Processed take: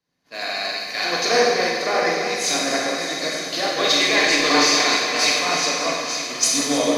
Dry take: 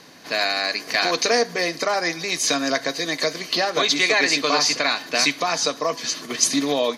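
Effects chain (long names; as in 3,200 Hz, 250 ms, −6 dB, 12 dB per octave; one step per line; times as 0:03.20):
echo machine with several playback heads 306 ms, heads all three, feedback 41%, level −11 dB
in parallel at −12 dB: hard clipping −15 dBFS, distortion −14 dB
on the sum: four-comb reverb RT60 2.3 s, combs from 31 ms, DRR −2.5 dB
multiband upward and downward expander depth 100%
level −5 dB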